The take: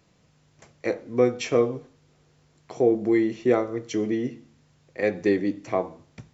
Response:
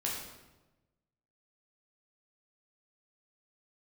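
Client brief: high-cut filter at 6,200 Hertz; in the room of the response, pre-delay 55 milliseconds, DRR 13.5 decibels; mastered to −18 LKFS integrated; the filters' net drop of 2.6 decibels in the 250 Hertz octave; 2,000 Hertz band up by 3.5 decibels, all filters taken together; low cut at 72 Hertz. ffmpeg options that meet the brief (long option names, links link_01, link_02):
-filter_complex "[0:a]highpass=72,lowpass=6200,equalizer=frequency=250:width_type=o:gain=-4,equalizer=frequency=2000:width_type=o:gain=4,asplit=2[link_01][link_02];[1:a]atrim=start_sample=2205,adelay=55[link_03];[link_02][link_03]afir=irnorm=-1:irlink=0,volume=-17.5dB[link_04];[link_01][link_04]amix=inputs=2:normalize=0,volume=8dB"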